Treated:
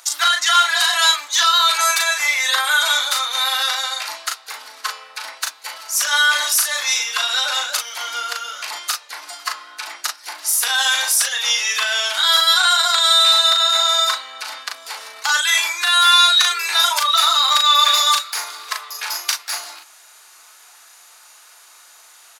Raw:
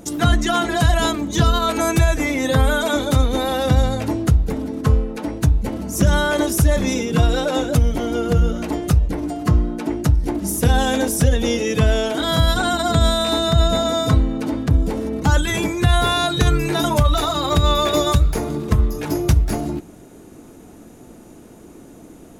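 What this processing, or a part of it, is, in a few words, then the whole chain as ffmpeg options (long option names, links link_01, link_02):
headphones lying on a table: -filter_complex "[0:a]asettb=1/sr,asplit=3[link_01][link_02][link_03];[link_01]atrim=end=18.674[link_04];[link_02]atrim=start=18.67:end=19.12,asetpts=PTS-STARTPTS,afade=type=in:duration=0.004:curve=qsin,afade=type=out:start_time=0.446:duration=0.004:curve=qsin,lowshelf=frequency=350:width_type=q:width=1.5:gain=-7.5[link_05];[link_03]atrim=start=19.116[link_06];[link_04][link_05]acrossfade=duration=0.004:curve1=hsin:curve2=qsin[link_07];[link_07][link_06]acrossfade=duration=0.004:curve1=qsin:curve2=hsin,highpass=frequency=1100:width=0.5412,highpass=frequency=1100:width=1.3066,equalizer=frequency=4500:width_type=o:width=0.56:gain=8,asplit=2[link_08][link_09];[link_09]adelay=38,volume=-4dB[link_10];[link_08][link_10]amix=inputs=2:normalize=0,volume=6dB"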